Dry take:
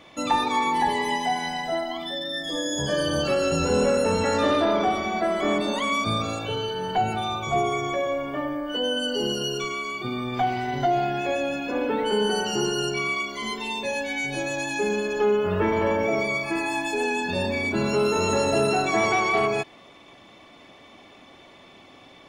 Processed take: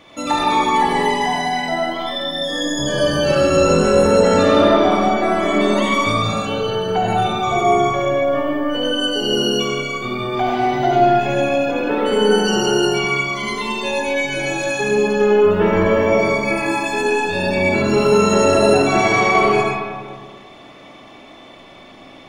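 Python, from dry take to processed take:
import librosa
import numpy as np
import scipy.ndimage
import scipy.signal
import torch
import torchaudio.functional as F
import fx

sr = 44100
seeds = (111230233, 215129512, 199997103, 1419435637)

y = fx.rev_freeverb(x, sr, rt60_s=1.8, hf_ratio=0.4, predelay_ms=35, drr_db=-4.0)
y = y * librosa.db_to_amplitude(2.5)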